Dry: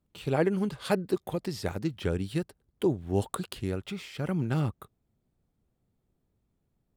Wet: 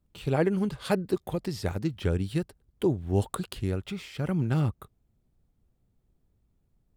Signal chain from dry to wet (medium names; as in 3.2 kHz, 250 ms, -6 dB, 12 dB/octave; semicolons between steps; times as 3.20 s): bass shelf 80 Hz +11.5 dB